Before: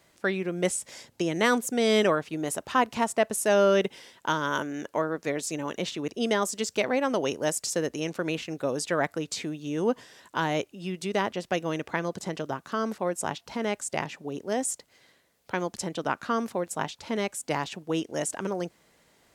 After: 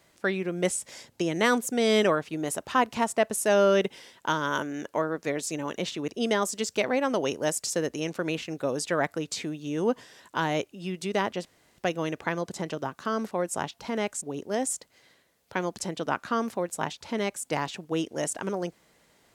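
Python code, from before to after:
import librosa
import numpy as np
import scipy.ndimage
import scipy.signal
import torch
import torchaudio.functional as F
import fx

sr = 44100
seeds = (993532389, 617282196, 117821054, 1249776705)

y = fx.edit(x, sr, fx.insert_room_tone(at_s=11.45, length_s=0.33),
    fx.cut(start_s=13.89, length_s=0.31), tone=tone)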